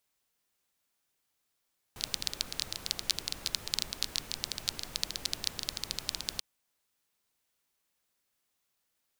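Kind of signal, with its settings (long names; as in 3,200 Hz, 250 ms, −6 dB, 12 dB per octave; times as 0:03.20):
rain-like ticks over hiss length 4.44 s, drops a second 14, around 4,300 Hz, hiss −9 dB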